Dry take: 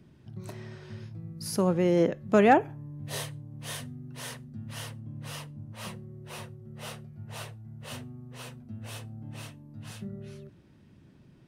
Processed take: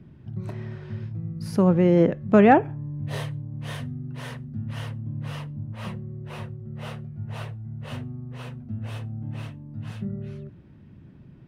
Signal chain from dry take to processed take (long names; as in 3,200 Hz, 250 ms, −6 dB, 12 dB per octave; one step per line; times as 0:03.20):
bass and treble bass +6 dB, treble −14 dB
level +3.5 dB